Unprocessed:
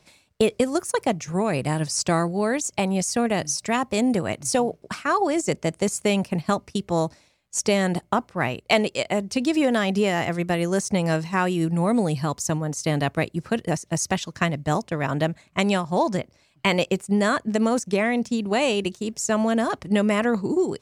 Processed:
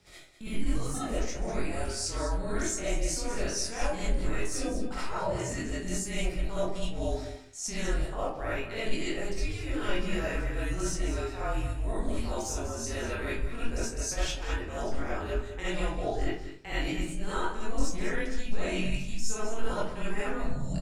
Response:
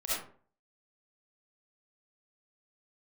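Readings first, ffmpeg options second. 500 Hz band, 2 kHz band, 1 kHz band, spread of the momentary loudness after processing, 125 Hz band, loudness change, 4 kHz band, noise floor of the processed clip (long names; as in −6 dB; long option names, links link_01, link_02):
−11.0 dB, −9.0 dB, −11.5 dB, 4 LU, −8.5 dB, −10.0 dB, −8.0 dB, −39 dBFS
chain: -filter_complex "[0:a]afreqshift=-220,asplit=2[link_01][link_02];[link_02]adelay=22,volume=-4dB[link_03];[link_01][link_03]amix=inputs=2:normalize=0,areverse,acompressor=threshold=-33dB:ratio=12,areverse,aecho=1:1:200:0.266[link_04];[1:a]atrim=start_sample=2205[link_05];[link_04][link_05]afir=irnorm=-1:irlink=0"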